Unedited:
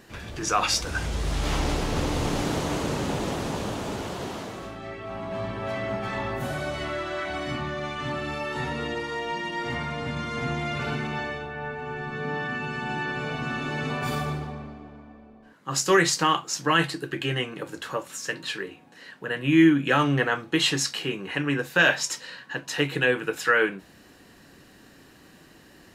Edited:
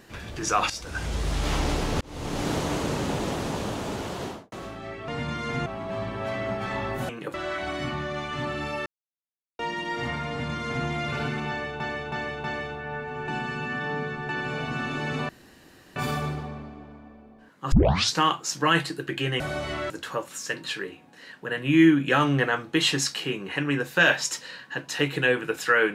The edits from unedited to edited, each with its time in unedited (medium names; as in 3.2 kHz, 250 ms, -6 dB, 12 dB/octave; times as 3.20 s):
0.70–1.13 s: fade in, from -14.5 dB
2.01–2.50 s: fade in
4.25–4.52 s: studio fade out
6.51–7.01 s: swap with 17.44–17.69 s
8.53–9.26 s: mute
9.96–10.54 s: copy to 5.08 s
11.15–11.47 s: loop, 4 plays
11.99–13.00 s: reverse
14.00 s: insert room tone 0.67 s
15.76 s: tape start 0.45 s